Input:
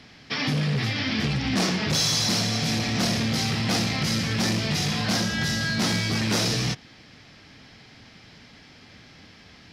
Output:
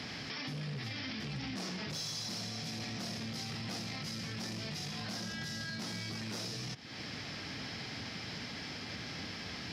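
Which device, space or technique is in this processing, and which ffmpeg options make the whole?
broadcast voice chain: -af "highpass=77,deesser=0.45,acompressor=threshold=-39dB:ratio=4,equalizer=f=5.1k:t=o:w=0.27:g=4,alimiter=level_in=14.5dB:limit=-24dB:level=0:latency=1:release=56,volume=-14.5dB,volume=6.5dB"

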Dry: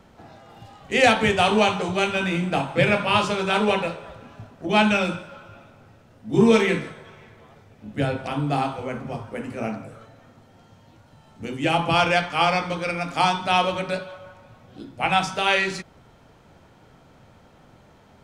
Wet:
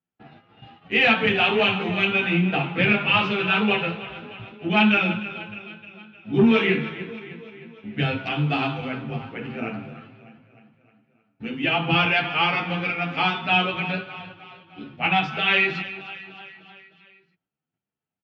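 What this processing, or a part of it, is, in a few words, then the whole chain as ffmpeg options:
barber-pole flanger into a guitar amplifier: -filter_complex "[0:a]agate=range=-38dB:threshold=-45dB:ratio=16:detection=peak,asettb=1/sr,asplit=3[a][b][c];[a]atrim=end=7.984[d];[b]atrim=start=7.98:end=8.88,asetpts=PTS-STARTPTS,afade=t=in:d=0.004:c=qsin,afade=t=out:st=0.896:d=0.004:c=qsin,aemphasis=mode=production:type=75kf[e];[c]atrim=start=8.876[f];[d][e]acrossfade=d=0.004:c1=hsin:c2=qsin[g];[g][f]acrossfade=d=0.004:c1=qsin:c2=hsin,aecho=1:1:306|612|918|1224|1530:0.168|0.094|0.0526|0.0295|0.0165,asplit=2[h][i];[i]adelay=9.4,afreqshift=2.6[j];[h][j]amix=inputs=2:normalize=1,asoftclip=type=tanh:threshold=-13.5dB,highpass=76,equalizer=f=81:t=q:w=4:g=-10,equalizer=f=160:t=q:w=4:g=3,equalizer=f=570:t=q:w=4:g=-9,equalizer=f=980:t=q:w=4:g=-6,equalizer=f=2.7k:t=q:w=4:g=7,lowpass=f=3.5k:w=0.5412,lowpass=f=3.5k:w=1.3066,volume=4dB"

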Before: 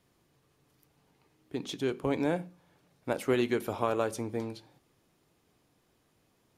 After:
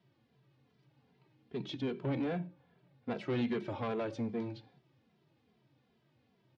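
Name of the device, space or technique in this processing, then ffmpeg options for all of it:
barber-pole flanger into a guitar amplifier: -filter_complex "[0:a]asplit=2[a][b];[b]adelay=2.6,afreqshift=-2.5[c];[a][c]amix=inputs=2:normalize=1,asoftclip=type=tanh:threshold=-30.5dB,highpass=87,equalizer=f=130:t=q:w=4:g=9,equalizer=f=220:t=q:w=4:g=6,equalizer=f=1.2k:t=q:w=4:g=-4,lowpass=f=4.4k:w=0.5412,lowpass=f=4.4k:w=1.3066,asettb=1/sr,asplit=3[d][e][f];[d]atrim=end=2.394[g];[e]atrim=start=2.39:end=3.11,asetpts=PTS-STARTPTS,afade=t=in:d=0.004:c=qsin,afade=t=out:st=0.716:d=0.004:c=qsin,highshelf=f=4.9k:g=-9.5[h];[f]atrim=start=3.106[i];[g][h]acrossfade=d=0.004:c1=hsin:c2=qsin[j];[j][i]acrossfade=d=0.004:c1=qsin:c2=hsin"

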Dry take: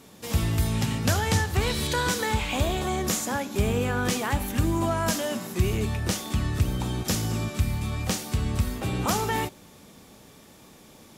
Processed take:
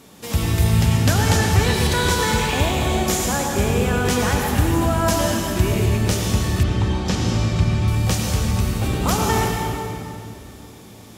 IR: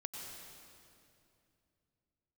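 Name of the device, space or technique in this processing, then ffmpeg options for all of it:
stairwell: -filter_complex "[1:a]atrim=start_sample=2205[a];[0:a][a]afir=irnorm=-1:irlink=0,asettb=1/sr,asplit=3[b][c][d];[b]atrim=end=6.634[e];[c]atrim=start=6.63:end=7.88,asetpts=PTS-STARTPTS,afade=t=in:d=0.004:c=qsin,afade=t=out:st=1.246:d=0.004:c=qsin,lowpass=5.2k[f];[d]atrim=start=7.876[g];[e][f]acrossfade=d=0.004:c1=hsin:c2=qsin[h];[h][g]acrossfade=d=0.004:c1=qsin:c2=hsin,volume=8dB"

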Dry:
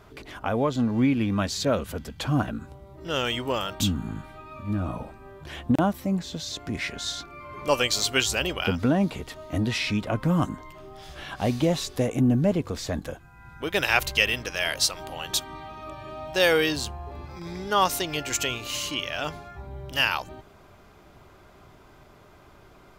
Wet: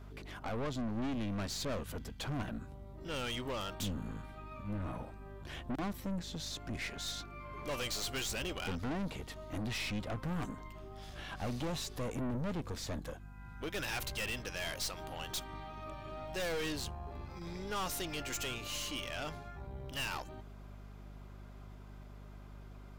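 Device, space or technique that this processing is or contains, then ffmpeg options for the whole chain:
valve amplifier with mains hum: -af "aeval=exprs='(tanh(28.2*val(0)+0.45)-tanh(0.45))/28.2':c=same,aeval=exprs='val(0)+0.00631*(sin(2*PI*50*n/s)+sin(2*PI*2*50*n/s)/2+sin(2*PI*3*50*n/s)/3+sin(2*PI*4*50*n/s)/4+sin(2*PI*5*50*n/s)/5)':c=same,volume=-5.5dB"

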